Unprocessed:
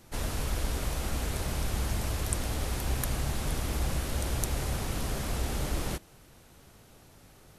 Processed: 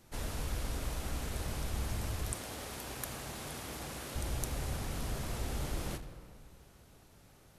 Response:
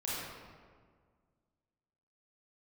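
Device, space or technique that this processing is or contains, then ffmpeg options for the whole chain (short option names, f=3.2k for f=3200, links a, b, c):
saturated reverb return: -filter_complex "[0:a]asplit=2[a][b];[1:a]atrim=start_sample=2205[c];[b][c]afir=irnorm=-1:irlink=0,asoftclip=type=tanh:threshold=-21.5dB,volume=-9.5dB[d];[a][d]amix=inputs=2:normalize=0,asettb=1/sr,asplit=3[e][f][g];[e]atrim=end=2.324[h];[f]atrim=start=2.32:end=4.16,asetpts=PTS-STARTPTS,afade=t=in:d=0.004:c=qsin,afade=t=out:st=1.836:d=0.004:c=qsin,highpass=f=270:p=1[i];[g]atrim=start=4.156[j];[h][i]acrossfade=d=0.004:c1=hsin:c2=qsin[k];[k][j]acrossfade=d=0.004:c1=qsin:c2=hsin,volume=-7.5dB"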